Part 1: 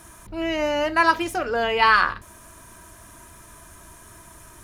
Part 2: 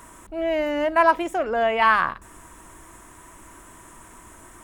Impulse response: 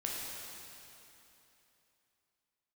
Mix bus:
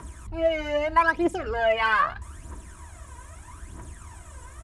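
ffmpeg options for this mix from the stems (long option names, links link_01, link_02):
-filter_complex "[0:a]equalizer=frequency=69:width_type=o:width=1:gain=14.5,acompressor=threshold=-21dB:ratio=6,volume=-8dB[link_01];[1:a]aphaser=in_gain=1:out_gain=1:delay=2.1:decay=0.78:speed=0.79:type=triangular,highpass=frequency=49:width=0.5412,highpass=frequency=49:width=1.3066,volume=-1,adelay=0.4,volume=-6dB,asplit=2[link_02][link_03];[link_03]apad=whole_len=204246[link_04];[link_01][link_04]sidechaincompress=threshold=-27dB:ratio=8:attack=16:release=193[link_05];[link_05][link_02]amix=inputs=2:normalize=0,lowpass=frequency=10000:width=0.5412,lowpass=frequency=10000:width=1.3066,lowshelf=frequency=95:gain=9.5"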